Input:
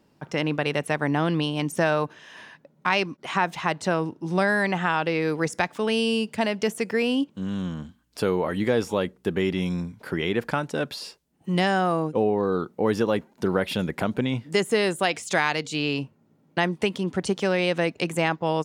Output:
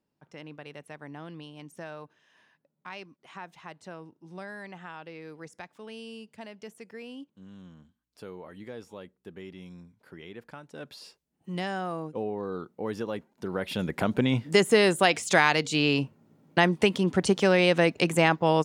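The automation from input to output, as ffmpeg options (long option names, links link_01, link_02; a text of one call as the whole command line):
ffmpeg -i in.wav -af "volume=2dB,afade=type=in:start_time=10.66:duration=0.4:silence=0.354813,afade=type=in:start_time=13.48:duration=0.92:silence=0.251189" out.wav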